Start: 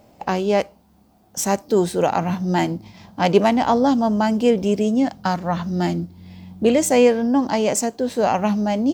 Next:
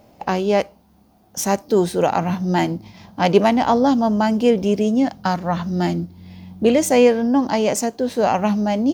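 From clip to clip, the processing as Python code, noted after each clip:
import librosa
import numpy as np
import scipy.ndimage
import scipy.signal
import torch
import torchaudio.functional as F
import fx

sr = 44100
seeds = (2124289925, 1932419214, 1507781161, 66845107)

y = fx.notch(x, sr, hz=7700.0, q=6.6)
y = y * librosa.db_to_amplitude(1.0)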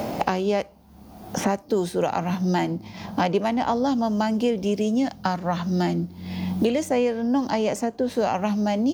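y = fx.band_squash(x, sr, depth_pct=100)
y = y * librosa.db_to_amplitude(-6.0)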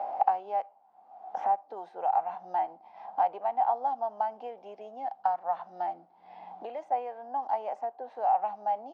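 y = fx.ladder_bandpass(x, sr, hz=820.0, resonance_pct=80)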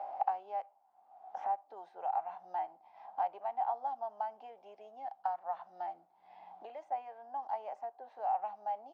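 y = fx.peak_eq(x, sr, hz=220.0, db=-7.0, octaves=1.8)
y = fx.notch(y, sr, hz=490.0, q=12.0)
y = y * librosa.db_to_amplitude(-6.5)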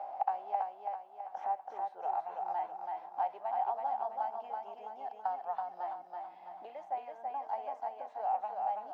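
y = fx.echo_feedback(x, sr, ms=329, feedback_pct=48, wet_db=-3.5)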